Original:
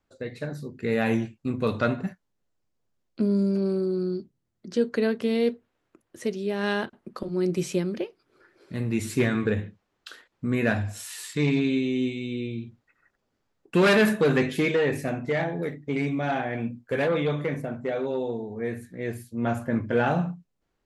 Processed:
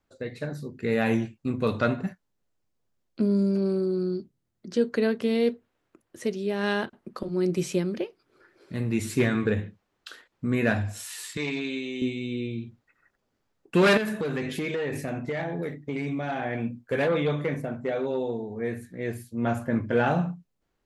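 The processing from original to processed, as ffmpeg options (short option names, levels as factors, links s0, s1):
-filter_complex "[0:a]asettb=1/sr,asplit=3[s0][s1][s2];[s0]atrim=end=11.374[s3];[s1]atrim=start=11.37:end=12.02,asetpts=PTS-STARTPTS,afade=t=in:d=0.004:c=qsin,afade=t=out:st=0.646:d=0.004:c=qsin,highpass=f=680:p=1[s4];[s2]atrim=start=12.016[s5];[s3][s4]acrossfade=d=0.004:c1=hsin:c2=qsin[s6];[s6][s5]acrossfade=d=0.004:c1=qsin:c2=hsin,asettb=1/sr,asplit=3[s7][s8][s9];[s7]atrim=end=13.974[s10];[s8]atrim=start=13.97:end=16.42,asetpts=PTS-STARTPTS,afade=t=in:d=0.004:c=qsin,afade=t=out:st=2.446:d=0.004:c=qsin,acompressor=threshold=0.0501:ratio=5:attack=3.2:release=140:knee=1:detection=peak[s11];[s9]atrim=start=16.416[s12];[s10][s11]acrossfade=d=0.004:c1=hsin:c2=qsin[s13];[s13][s12]acrossfade=d=0.004:c1=qsin:c2=hsin"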